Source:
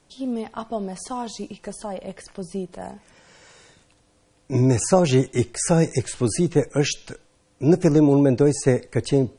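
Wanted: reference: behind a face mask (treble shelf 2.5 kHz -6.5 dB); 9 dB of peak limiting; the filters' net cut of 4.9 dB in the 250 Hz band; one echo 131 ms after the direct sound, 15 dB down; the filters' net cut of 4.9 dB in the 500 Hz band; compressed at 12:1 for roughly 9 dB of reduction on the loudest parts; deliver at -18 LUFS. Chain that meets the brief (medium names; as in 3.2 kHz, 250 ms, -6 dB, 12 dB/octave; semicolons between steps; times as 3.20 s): peaking EQ 250 Hz -5.5 dB; peaking EQ 500 Hz -4 dB; compression 12:1, threshold -25 dBFS; peak limiter -24 dBFS; treble shelf 2.5 kHz -6.5 dB; delay 131 ms -15 dB; trim +17.5 dB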